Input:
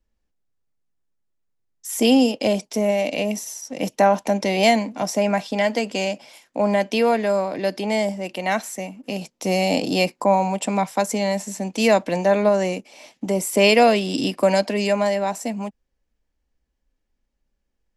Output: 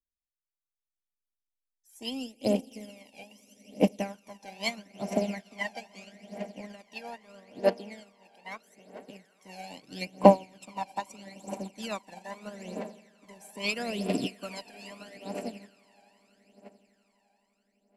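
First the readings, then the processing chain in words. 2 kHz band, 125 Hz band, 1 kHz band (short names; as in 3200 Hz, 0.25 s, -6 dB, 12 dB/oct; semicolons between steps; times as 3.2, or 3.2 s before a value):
-13.5 dB, -9.5 dB, -11.5 dB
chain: harmonic-percussive split harmonic -4 dB; swelling echo 85 ms, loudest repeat 8, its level -16.5 dB; phaser 0.78 Hz, delay 1.3 ms, feedback 71%; upward expander 2.5:1, over -29 dBFS; gain -1.5 dB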